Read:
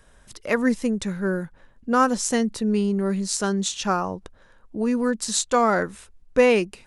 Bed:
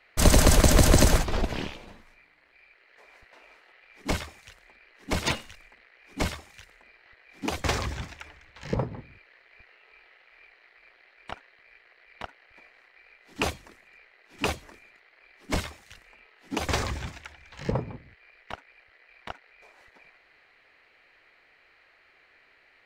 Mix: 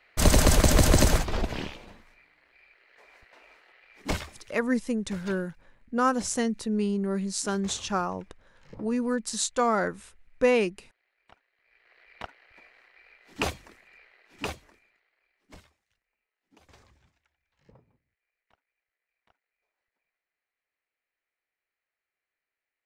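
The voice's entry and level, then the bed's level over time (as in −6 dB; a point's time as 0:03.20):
4.05 s, −5.0 dB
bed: 0:04.25 −1.5 dB
0:04.91 −18.5 dB
0:11.51 −18.5 dB
0:11.96 −1 dB
0:14.15 −1 dB
0:16.03 −30 dB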